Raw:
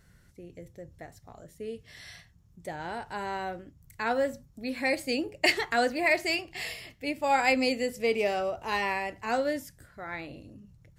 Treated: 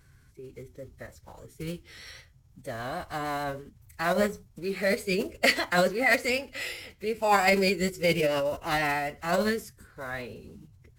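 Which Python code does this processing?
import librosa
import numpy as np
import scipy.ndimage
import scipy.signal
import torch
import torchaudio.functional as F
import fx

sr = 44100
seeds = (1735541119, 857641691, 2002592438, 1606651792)

y = fx.block_float(x, sr, bits=5)
y = fx.vibrato(y, sr, rate_hz=6.5, depth_cents=28.0)
y = fx.pitch_keep_formants(y, sr, semitones=-5.0)
y = y * 10.0 ** (2.5 / 20.0)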